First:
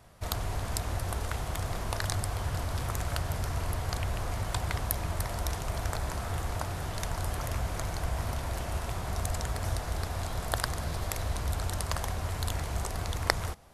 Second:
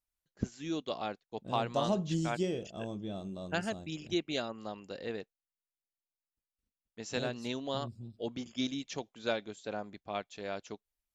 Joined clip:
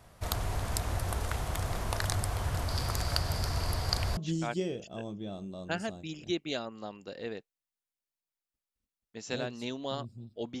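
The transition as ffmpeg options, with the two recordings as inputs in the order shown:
-filter_complex "[0:a]asettb=1/sr,asplit=3[a][b][c];[a]atrim=end=2.684[d];[b]atrim=start=2.68:end=4.17,asetpts=PTS-STARTPTS,afade=t=in:d=0.004:c=qsin,afade=t=out:st=1.486:d=0.004:c=qsin,equalizer=f=4.7k:t=o:w=0.31:g=14[e];[c]atrim=start=4.166[f];[d][e]acrossfade=d=0.004:c1=hsin:c2=qsin[g];[g][f]acrossfade=d=0.004:c1=qsin:c2=hsin,apad=whole_dur=10.6,atrim=end=10.6,atrim=end=4.172[h];[1:a]atrim=start=1.998:end=8.43[i];[h][i]acrossfade=d=0.004:c1=hsin:c2=hsin"

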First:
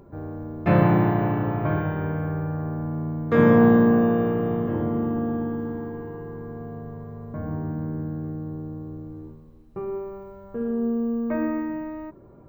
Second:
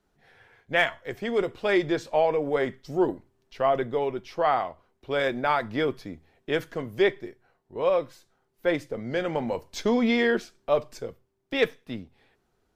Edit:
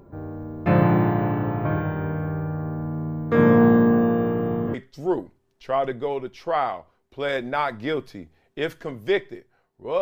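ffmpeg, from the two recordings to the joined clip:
-filter_complex "[0:a]apad=whole_dur=10.01,atrim=end=10.01,atrim=end=4.742[a];[1:a]atrim=start=2.648:end=7.92[b];[a][b]acrossfade=d=0.004:c1=hsin:c2=hsin"

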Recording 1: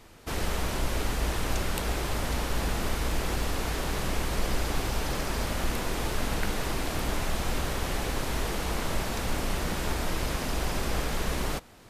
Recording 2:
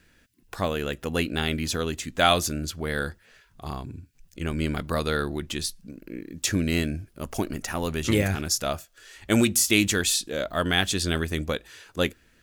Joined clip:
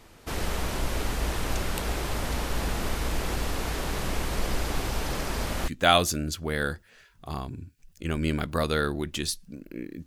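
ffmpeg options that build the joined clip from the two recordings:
-filter_complex "[0:a]apad=whole_dur=10.06,atrim=end=10.06,atrim=end=5.682[a];[1:a]atrim=start=2.038:end=6.42[b];[a][b]acrossfade=d=0.004:c1=hsin:c2=hsin"

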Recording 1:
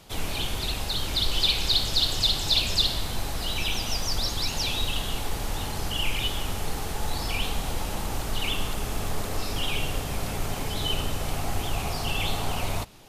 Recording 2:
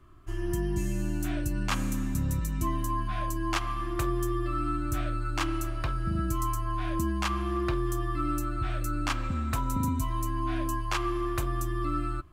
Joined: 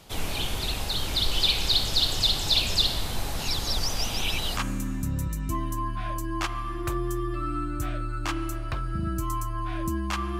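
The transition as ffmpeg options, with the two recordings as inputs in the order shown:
-filter_complex "[0:a]apad=whole_dur=10.39,atrim=end=10.39,asplit=2[a][b];[a]atrim=end=3.392[c];[b]atrim=start=3.388:end=4.572,asetpts=PTS-STARTPTS,areverse[d];[1:a]atrim=start=1.688:end=7.51[e];[c][d]acrossfade=d=0.004:c1=hsin:c2=hsin[f];[f][e]acrossfade=d=0.004:c1=hsin:c2=hsin"

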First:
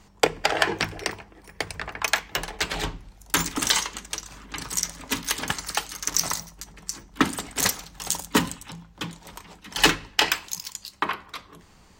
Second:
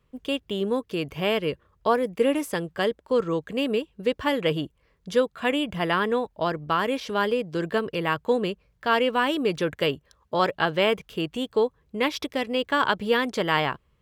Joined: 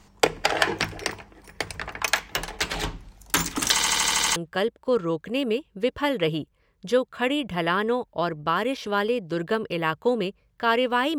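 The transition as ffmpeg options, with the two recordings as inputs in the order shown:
-filter_complex "[0:a]apad=whole_dur=11.18,atrim=end=11.18,asplit=8[a][b][c][d][e][f][g][h];[a]atrim=end=3.802[i];[b]atrim=start=3.718:end=3.802[j];[c]atrim=start=3.718:end=3.802[k];[d]atrim=start=3.718:end=3.802[l];[e]atrim=start=3.718:end=3.802[m];[f]atrim=start=3.718:end=3.802[n];[g]atrim=start=3.718:end=3.802[o];[h]atrim=start=3.718:end=3.802[p];[1:a]atrim=start=2.588:end=9.41[q];[i][j]acrossfade=d=0.004:c1=hsin:c2=hsin[r];[r][k]acrossfade=d=0.004:c1=hsin:c2=hsin[s];[s][l]acrossfade=d=0.004:c1=hsin:c2=hsin[t];[t][m]acrossfade=d=0.004:c1=hsin:c2=hsin[u];[u][n]acrossfade=d=0.004:c1=hsin:c2=hsin[v];[v][o]acrossfade=d=0.004:c1=hsin:c2=hsin[w];[w][p]acrossfade=d=0.004:c1=hsin:c2=hsin[x];[x][q]acrossfade=d=0.004:c1=hsin:c2=hsin"

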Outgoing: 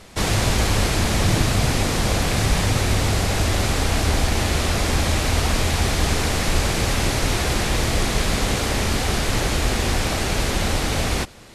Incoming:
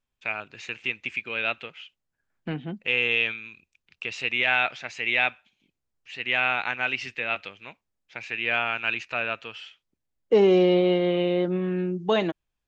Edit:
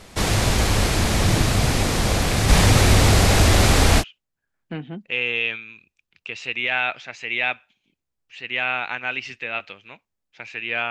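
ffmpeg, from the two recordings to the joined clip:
-filter_complex "[0:a]asplit=3[a][b][c];[a]afade=t=out:st=2.48:d=0.02[d];[b]acontrast=37,afade=t=in:st=2.48:d=0.02,afade=t=out:st=4.04:d=0.02[e];[c]afade=t=in:st=4.04:d=0.02[f];[d][e][f]amix=inputs=3:normalize=0,apad=whole_dur=10.9,atrim=end=10.9,atrim=end=4.04,asetpts=PTS-STARTPTS[g];[1:a]atrim=start=1.74:end=8.66,asetpts=PTS-STARTPTS[h];[g][h]acrossfade=d=0.06:c1=tri:c2=tri"

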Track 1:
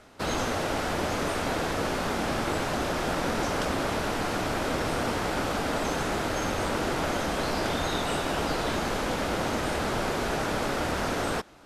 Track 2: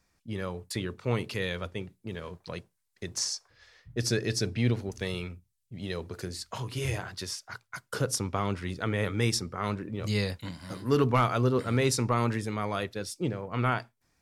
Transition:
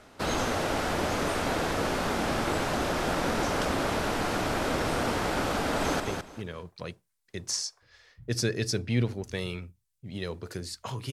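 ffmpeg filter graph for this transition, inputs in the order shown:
-filter_complex "[0:a]apad=whole_dur=11.12,atrim=end=11.12,atrim=end=6.002[a];[1:a]atrim=start=1.678:end=6.8[b];[a][b]acrossfade=d=0.004:c1=hsin:c2=hsin,asplit=2[c][d];[d]afade=t=in:st=5.58:d=0.01,afade=t=out:st=6:d=0.01,aecho=0:1:210|420|630:0.530884|0.106177|0.0212354[e];[c][e]amix=inputs=2:normalize=0"

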